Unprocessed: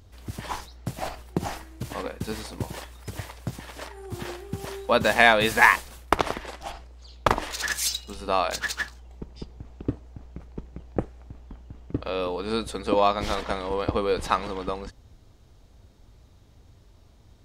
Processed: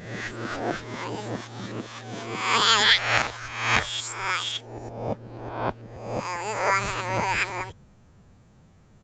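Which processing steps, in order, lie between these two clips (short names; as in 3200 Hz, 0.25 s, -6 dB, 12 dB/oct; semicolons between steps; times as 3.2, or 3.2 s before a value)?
spectral swells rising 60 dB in 1.50 s; wide varispeed 1.93×; downsampling 16000 Hz; gain -4.5 dB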